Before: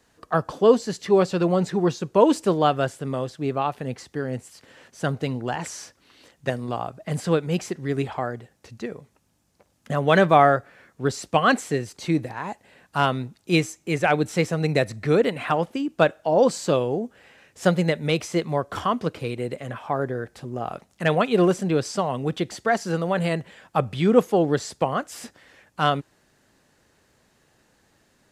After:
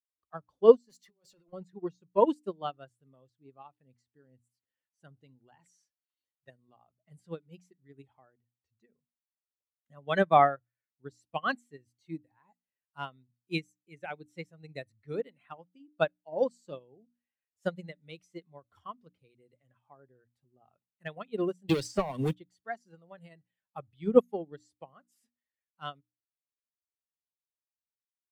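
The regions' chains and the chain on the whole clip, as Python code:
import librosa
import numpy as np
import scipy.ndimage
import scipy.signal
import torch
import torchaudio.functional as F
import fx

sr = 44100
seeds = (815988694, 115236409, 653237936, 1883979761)

y = fx.chain(x, sr, fx.over_compress(threshold_db=-25.0, ratio=-0.5),
    fx.bass_treble(bass_db=-8, treble_db=5),
    fx.overload_stage(gain_db=25.5), at=(0.89, 1.53))
y = fx.chain(y, sr, fx.highpass(hz=100.0, slope=6),
    fx.leveller(passes=3),
    fx.band_squash(depth_pct=100), at=(21.69, 22.35))
y = fx.bin_expand(y, sr, power=1.5)
y = fx.hum_notches(y, sr, base_hz=60, count=5)
y = fx.upward_expand(y, sr, threshold_db=-30.0, expansion=2.5)
y = F.gain(torch.from_numpy(y), 1.5).numpy()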